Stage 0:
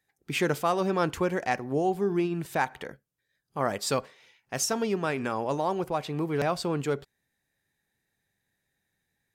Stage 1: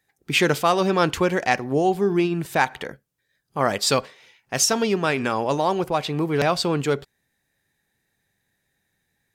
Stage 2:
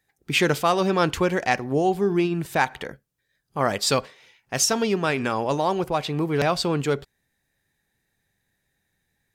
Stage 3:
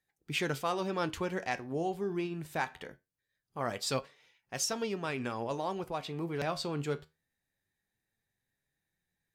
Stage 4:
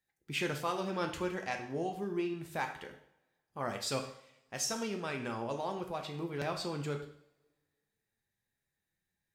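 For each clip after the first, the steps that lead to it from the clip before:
dynamic equaliser 3,700 Hz, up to +6 dB, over −44 dBFS, Q 0.78; level +6 dB
low-shelf EQ 64 Hz +8 dB; level −1.5 dB
flanger 0.22 Hz, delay 5.4 ms, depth 8.4 ms, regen +71%; level −7.5 dB
coupled-rooms reverb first 0.61 s, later 1.8 s, from −25 dB, DRR 4 dB; level −3 dB

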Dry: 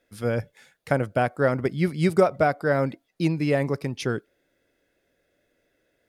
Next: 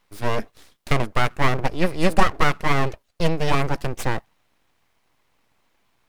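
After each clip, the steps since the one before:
full-wave rectification
level +5.5 dB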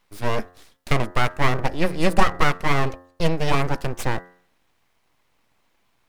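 hum removal 89.21 Hz, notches 22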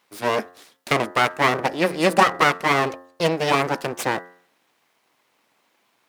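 high-pass filter 250 Hz 12 dB per octave
level +4 dB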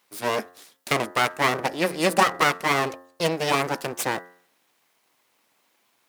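high-shelf EQ 5,600 Hz +8.5 dB
level −3.5 dB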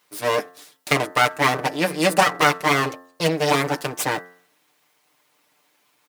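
comb filter 6.7 ms
level +1.5 dB

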